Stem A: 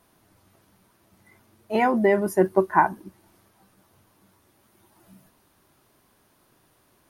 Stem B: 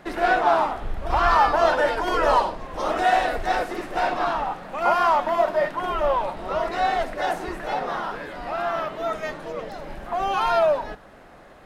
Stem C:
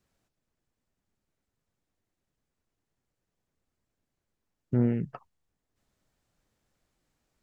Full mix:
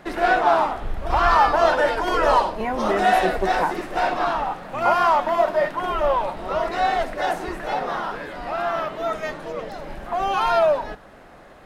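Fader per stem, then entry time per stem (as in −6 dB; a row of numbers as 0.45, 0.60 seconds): −5.5, +1.5, −17.0 decibels; 0.85, 0.00, 0.00 seconds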